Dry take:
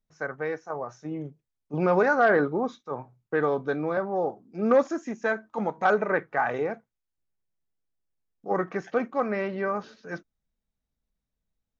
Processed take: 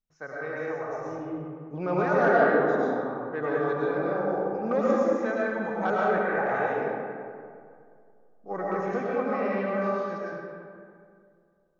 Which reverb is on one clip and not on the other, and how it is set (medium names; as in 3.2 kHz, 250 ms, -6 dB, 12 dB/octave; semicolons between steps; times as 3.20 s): algorithmic reverb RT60 2.3 s, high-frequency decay 0.5×, pre-delay 70 ms, DRR -6.5 dB; trim -7.5 dB